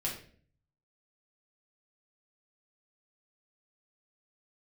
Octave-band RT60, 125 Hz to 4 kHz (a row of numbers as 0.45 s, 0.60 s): 0.95 s, 0.70 s, 0.55 s, 0.40 s, 0.45 s, 0.40 s